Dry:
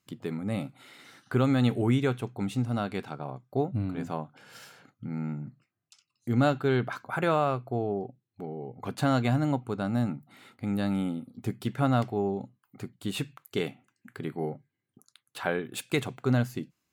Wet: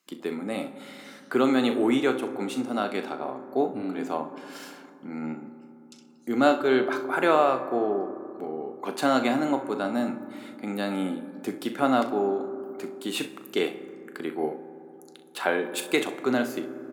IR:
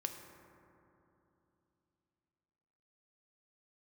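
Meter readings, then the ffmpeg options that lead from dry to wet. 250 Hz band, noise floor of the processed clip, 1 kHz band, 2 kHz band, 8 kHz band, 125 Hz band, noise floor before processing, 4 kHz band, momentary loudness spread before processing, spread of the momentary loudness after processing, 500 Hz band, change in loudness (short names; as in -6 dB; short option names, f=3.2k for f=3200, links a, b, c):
+2.5 dB, -50 dBFS, +5.5 dB, +5.5 dB, +5.0 dB, -14.5 dB, -84 dBFS, +5.0 dB, 17 LU, 18 LU, +5.5 dB, +3.0 dB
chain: -filter_complex "[0:a]highpass=f=250:w=0.5412,highpass=f=250:w=1.3066,aecho=1:1:38|64:0.266|0.178,asplit=2[a][b];[1:a]atrim=start_sample=2205[c];[b][c]afir=irnorm=-1:irlink=0,volume=1dB[d];[a][d]amix=inputs=2:normalize=0,volume=-1dB"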